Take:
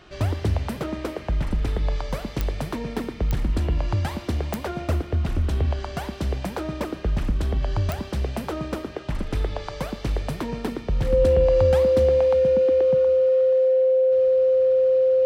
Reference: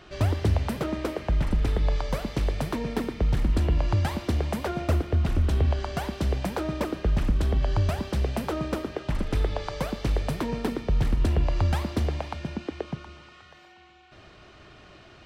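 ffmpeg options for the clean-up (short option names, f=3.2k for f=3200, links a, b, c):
-af "adeclick=t=4,bandreject=f=520:w=30"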